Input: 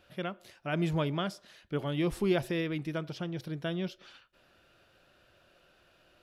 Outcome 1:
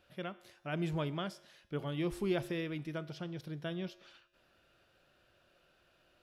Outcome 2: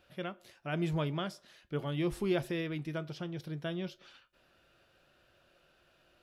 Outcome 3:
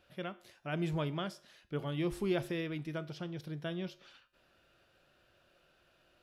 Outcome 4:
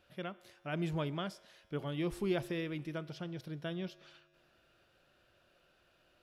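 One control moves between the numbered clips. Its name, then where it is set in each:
tuned comb filter, decay: 1, 0.16, 0.46, 2.2 seconds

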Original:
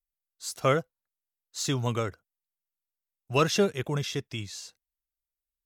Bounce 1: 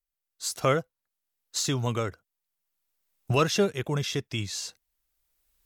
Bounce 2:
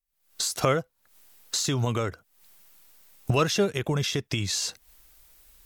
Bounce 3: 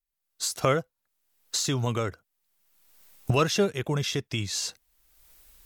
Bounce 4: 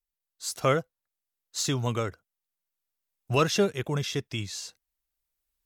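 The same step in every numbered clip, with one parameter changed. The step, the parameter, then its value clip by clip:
camcorder AGC, rising by: 13, 87, 34, 5.4 dB per second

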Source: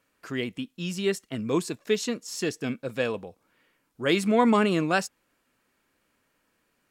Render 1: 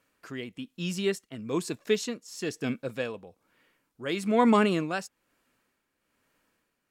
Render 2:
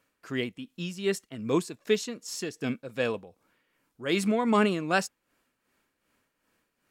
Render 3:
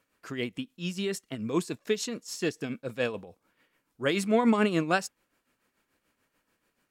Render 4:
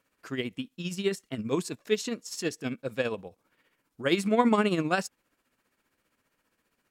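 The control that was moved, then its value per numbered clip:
amplitude tremolo, speed: 1.1, 2.6, 6.9, 15 Hertz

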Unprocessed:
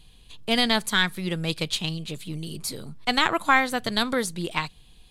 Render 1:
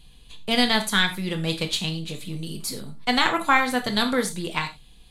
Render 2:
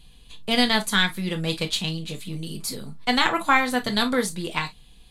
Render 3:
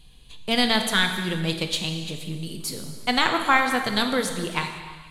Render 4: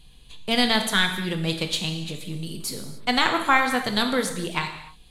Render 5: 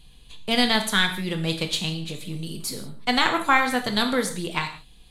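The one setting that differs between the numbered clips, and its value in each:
reverb whose tail is shaped and stops, gate: 130, 80, 530, 320, 200 milliseconds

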